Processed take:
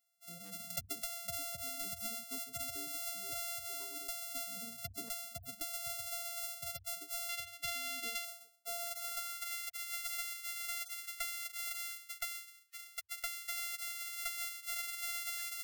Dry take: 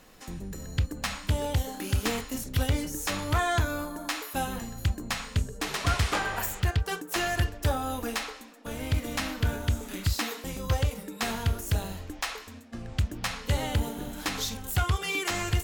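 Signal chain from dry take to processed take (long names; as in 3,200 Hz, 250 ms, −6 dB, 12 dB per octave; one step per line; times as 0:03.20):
samples sorted by size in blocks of 64 samples
first-order pre-emphasis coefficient 0.9
mains-hum notches 50/100/150/200/250 Hz
downward expander −42 dBFS
gate on every frequency bin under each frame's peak −10 dB strong
0:07.29–0:08.25: parametric band 2,400 Hz +10 dB 1.8 octaves
downward compressor 8 to 1, threshold −47 dBFS, peak gain reduction 21 dB
high-pass filter sweep 210 Hz → 1,800 Hz, 0:07.82–0:09.52
soft clipping −35 dBFS, distortion −14 dB
0:00.70–0:01.84: multiband upward and downward compressor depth 100%
level +14.5 dB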